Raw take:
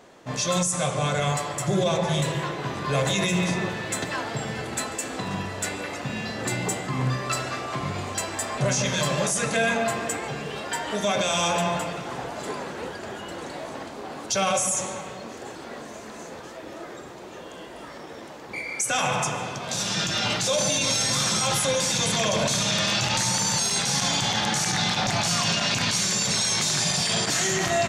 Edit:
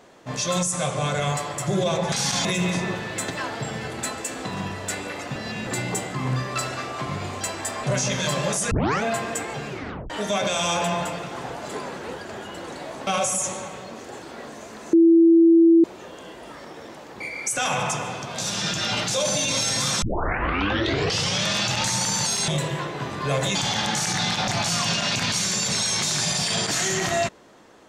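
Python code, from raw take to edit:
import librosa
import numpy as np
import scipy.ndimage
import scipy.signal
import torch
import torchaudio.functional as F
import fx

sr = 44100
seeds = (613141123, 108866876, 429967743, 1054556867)

y = fx.edit(x, sr, fx.swap(start_s=2.12, length_s=1.07, other_s=23.81, other_length_s=0.33),
    fx.reverse_span(start_s=6.1, length_s=0.31),
    fx.tape_start(start_s=9.45, length_s=0.32),
    fx.tape_stop(start_s=10.42, length_s=0.42),
    fx.cut(start_s=13.81, length_s=0.59),
    fx.bleep(start_s=16.26, length_s=0.91, hz=332.0, db=-10.5),
    fx.tape_start(start_s=21.35, length_s=1.45), tone=tone)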